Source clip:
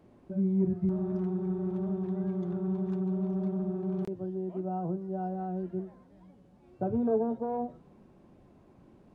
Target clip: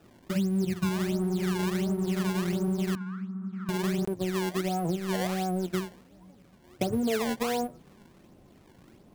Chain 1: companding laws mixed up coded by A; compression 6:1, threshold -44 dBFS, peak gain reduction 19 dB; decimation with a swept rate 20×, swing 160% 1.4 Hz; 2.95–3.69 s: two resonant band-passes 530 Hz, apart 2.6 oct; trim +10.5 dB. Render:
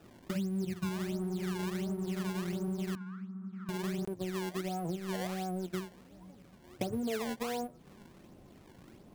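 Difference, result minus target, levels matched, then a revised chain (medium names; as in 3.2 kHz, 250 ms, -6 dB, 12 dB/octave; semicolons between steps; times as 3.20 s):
compression: peak gain reduction +7 dB
companding laws mixed up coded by A; compression 6:1, threshold -35.5 dBFS, peak gain reduction 12 dB; decimation with a swept rate 20×, swing 160% 1.4 Hz; 2.95–3.69 s: two resonant band-passes 530 Hz, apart 2.6 oct; trim +10.5 dB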